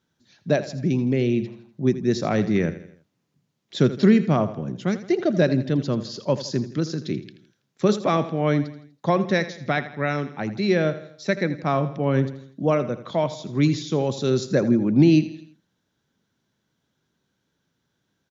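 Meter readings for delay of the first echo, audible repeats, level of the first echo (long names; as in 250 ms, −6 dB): 82 ms, 4, −14.0 dB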